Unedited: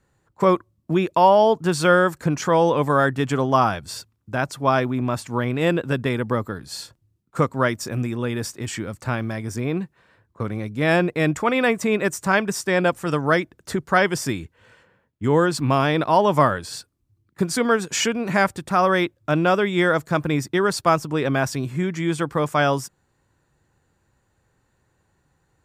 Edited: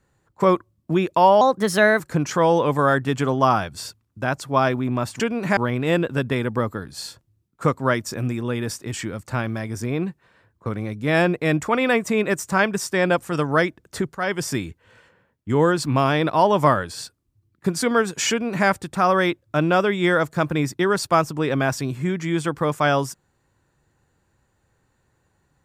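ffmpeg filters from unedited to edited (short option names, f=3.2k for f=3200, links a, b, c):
-filter_complex "[0:a]asplit=6[a][b][c][d][e][f];[a]atrim=end=1.414[g];[b]atrim=start=1.41:end=2.11,asetpts=PTS-STARTPTS,asetrate=52479,aresample=44100,atrim=end_sample=25941,asetpts=PTS-STARTPTS[h];[c]atrim=start=2.106:end=5.312[i];[d]atrim=start=18.038:end=18.412[j];[e]atrim=start=5.308:end=13.89,asetpts=PTS-STARTPTS,afade=t=out:st=8.578:d=0.004:c=hsin:silence=0.199526[k];[f]atrim=start=13.89,asetpts=PTS-STARTPTS,afade=t=in:d=0.32:silence=0.199526[l];[g][h]acrossfade=d=0.004:c1=hsin:c2=hsin[m];[m][i]acrossfade=d=0.004:c1=hsin:c2=hsin[n];[n][j]acrossfade=d=0.004:c1=hsin:c2=hsin[o];[k][l]concat=n=2:v=0:a=1[p];[o][p]acrossfade=d=0.004:c1=hsin:c2=hsin"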